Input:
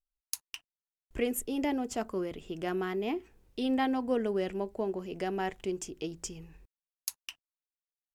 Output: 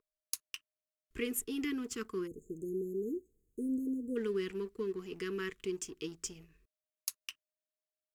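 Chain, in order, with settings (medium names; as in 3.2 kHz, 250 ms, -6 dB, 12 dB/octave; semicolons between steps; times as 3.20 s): whistle 620 Hz -52 dBFS; elliptic band-stop 450–1100 Hz; bass shelf 210 Hz -7.5 dB; waveshaping leveller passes 1; spectral selection erased 2.27–4.16 s, 620–6300 Hz; trim -4.5 dB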